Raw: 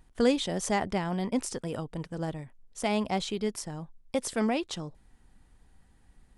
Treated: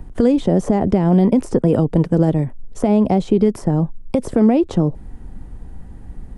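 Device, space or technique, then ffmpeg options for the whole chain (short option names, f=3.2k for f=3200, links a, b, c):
mastering chain: -filter_complex "[0:a]equalizer=f=4k:t=o:w=0.77:g=-2.5,acrossover=split=170|850|1800[a][b][c][d];[a]acompressor=threshold=-49dB:ratio=4[e];[b]acompressor=threshold=-32dB:ratio=4[f];[c]acompressor=threshold=-54dB:ratio=4[g];[d]acompressor=threshold=-48dB:ratio=4[h];[e][f][g][h]amix=inputs=4:normalize=0,acompressor=threshold=-33dB:ratio=3,tiltshelf=f=970:g=9,alimiter=level_in=20.5dB:limit=-1dB:release=50:level=0:latency=1,volume=-3.5dB"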